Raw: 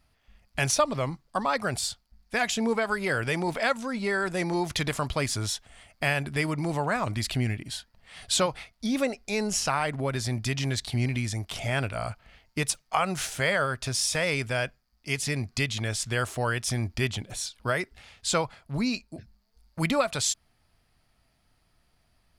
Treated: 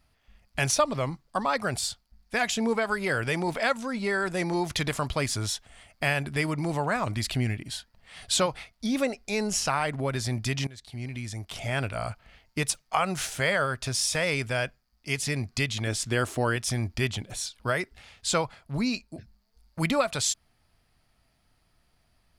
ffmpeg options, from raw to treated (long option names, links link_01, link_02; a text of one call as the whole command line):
ffmpeg -i in.wav -filter_complex "[0:a]asettb=1/sr,asplit=3[link_01][link_02][link_03];[link_01]atrim=end=15.874[link_04];[link_02]atrim=start=15.87:end=16.56,asetpts=PTS-STARTPTS,afade=type=in:duration=0.004:curve=qsin,afade=type=out:start_time=0.686:duration=0.004:curve=qsin,equalizer=frequency=300:width=1.5:gain=8[link_05];[link_03]atrim=start=16.556[link_06];[link_04][link_05]acrossfade=duration=0.004:curve1=hsin:curve2=qsin[link_07];[link_07][link_06]acrossfade=duration=0.004:curve1=qsin:curve2=hsin,asplit=2[link_08][link_09];[link_08]atrim=end=10.67,asetpts=PTS-STARTPTS,afade=type=out:start_time=10.666:duration=0.004:curve=hsin:silence=0.0891251[link_10];[link_09]atrim=start=10.67,asetpts=PTS-STARTPTS,afade=type=in:duration=1.26:silence=0.0891251[link_11];[link_10][link_11]concat=n=2:v=0:a=1" out.wav